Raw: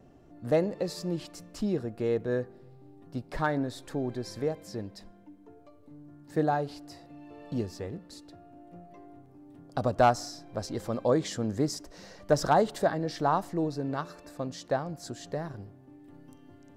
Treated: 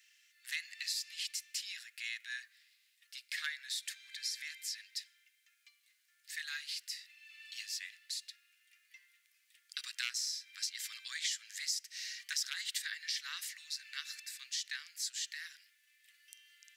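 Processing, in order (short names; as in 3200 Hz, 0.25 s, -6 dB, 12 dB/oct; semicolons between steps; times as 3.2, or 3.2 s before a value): steep high-pass 1900 Hz 48 dB/oct; compressor 3:1, threshold -47 dBFS, peak gain reduction 10.5 dB; gain +11 dB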